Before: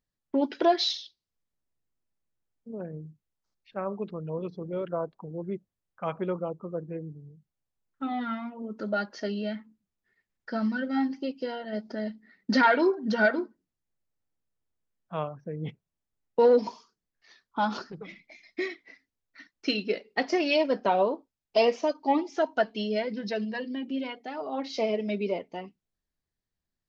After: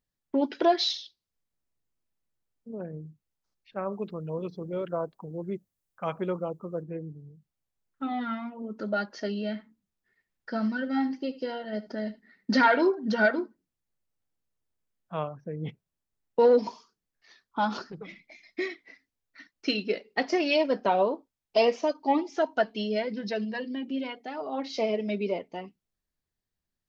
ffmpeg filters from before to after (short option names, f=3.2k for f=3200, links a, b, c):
-filter_complex "[0:a]asettb=1/sr,asplit=3[a][b][c];[a]atrim=end=3.924[d];[b]atrim=start=3.92:end=6.83,asetpts=PTS-STARTPTS,afade=t=in:d=0.004:c=qsin,afade=t=out:st=2.906:d=0.004:c=qsin,highshelf=f=6k:g=10.5[e];[c]atrim=start=6.826[f];[d][e]acrossfade=d=0.004:c1=hsin:c2=qsin[g];[g][f]acrossfade=d=0.004:c1=qsin:c2=hsin,asettb=1/sr,asplit=3[h][i][j];[h]atrim=end=9.414[k];[i]atrim=start=9.41:end=12.89,asetpts=PTS-STARTPTS,afade=t=in:d=0.004:c=qsin,afade=t=out:st=3.476:d=0.004:c=qsin,aecho=1:1:76:0.141,atrim=end_sample=153468[l];[j]atrim=start=12.886[m];[k][l]acrossfade=d=0.004:c1=hsin:c2=qsin[n];[n][m]acrossfade=d=0.004:c1=qsin:c2=hsin"